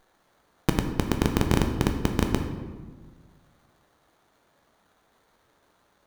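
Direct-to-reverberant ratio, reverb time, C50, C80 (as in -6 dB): 3.5 dB, 1.5 s, 6.5 dB, 8.5 dB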